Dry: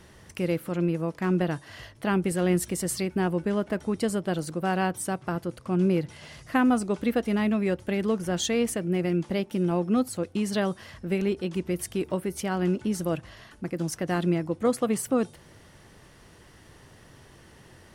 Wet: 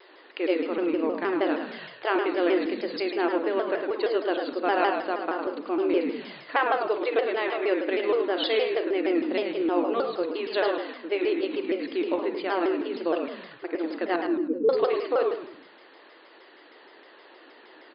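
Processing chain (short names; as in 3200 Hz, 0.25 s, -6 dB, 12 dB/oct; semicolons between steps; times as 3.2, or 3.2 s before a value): 14.16–14.69 spectral contrast raised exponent 3.4; brick-wall FIR band-pass 300–4800 Hz; frequency-shifting echo 0.106 s, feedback 36%, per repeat -47 Hz, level -6.5 dB; reverb RT60 0.35 s, pre-delay 33 ms, DRR 6.5 dB; shaped vibrato saw down 6.4 Hz, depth 160 cents; gain +2.5 dB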